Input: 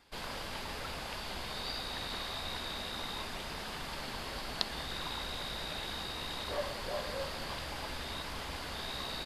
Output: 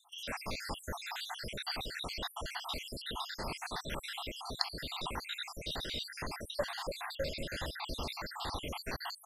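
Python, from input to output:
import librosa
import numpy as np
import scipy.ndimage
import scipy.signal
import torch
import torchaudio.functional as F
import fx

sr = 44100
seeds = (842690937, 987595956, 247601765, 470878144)

p1 = fx.spec_dropout(x, sr, seeds[0], share_pct=72)
p2 = fx.rider(p1, sr, range_db=10, speed_s=0.5)
p3 = p1 + (p2 * 10.0 ** (0.5 / 20.0))
y = p3 * 10.0 ** (-1.5 / 20.0)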